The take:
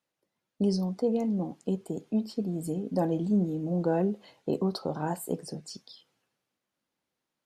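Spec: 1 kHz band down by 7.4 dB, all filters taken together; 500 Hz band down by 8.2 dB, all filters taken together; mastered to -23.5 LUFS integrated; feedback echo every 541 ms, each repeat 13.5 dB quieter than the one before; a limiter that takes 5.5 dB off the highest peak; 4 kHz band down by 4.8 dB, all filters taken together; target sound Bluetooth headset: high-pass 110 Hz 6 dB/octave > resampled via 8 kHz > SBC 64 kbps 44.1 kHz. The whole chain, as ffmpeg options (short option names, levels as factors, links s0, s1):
-af "equalizer=f=500:t=o:g=-9,equalizer=f=1000:t=o:g=-5.5,equalizer=f=4000:t=o:g=-6,alimiter=level_in=1.12:limit=0.0631:level=0:latency=1,volume=0.891,highpass=f=110:p=1,aecho=1:1:541|1082:0.211|0.0444,aresample=8000,aresample=44100,volume=4.22" -ar 44100 -c:a sbc -b:a 64k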